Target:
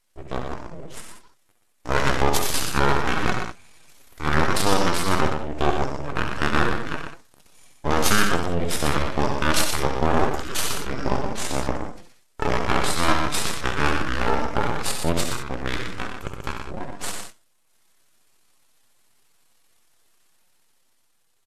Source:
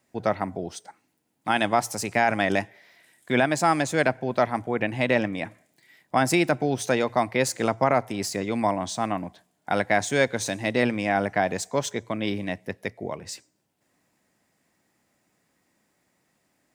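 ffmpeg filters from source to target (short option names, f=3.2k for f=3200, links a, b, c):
-filter_complex "[0:a]equalizer=f=14k:w=0.97:g=13,dynaudnorm=f=390:g=5:m=6dB,highshelf=f=2.2k:g=8,bandreject=f=119.4:t=h:w=4,bandreject=f=238.8:t=h:w=4,bandreject=f=358.2:t=h:w=4,flanger=delay=7.4:depth=2.6:regen=-30:speed=1.7:shape=sinusoidal,aeval=exprs='(tanh(3.55*val(0)+0.75)-tanh(0.75))/3.55':c=same,asplit=2[a][b];[b]aecho=0:1:48|62:0.501|0.168[c];[a][c]amix=inputs=2:normalize=0,aeval=exprs='abs(val(0))':c=same,asetrate=26222,aresample=44100,atempo=1.68179,asplit=2[d][e];[e]aecho=0:1:94:0.501[f];[d][f]amix=inputs=2:normalize=0,atempo=0.78,volume=3dB"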